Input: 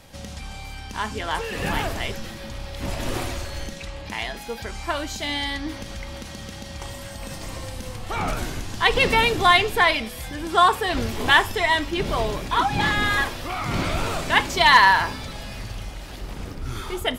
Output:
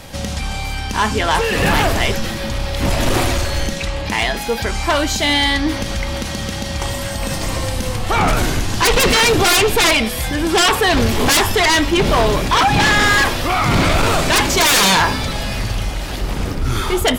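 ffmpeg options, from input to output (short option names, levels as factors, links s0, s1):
-af "aeval=exprs='0.596*sin(PI/2*5.01*val(0)/0.596)':c=same,volume=0.562"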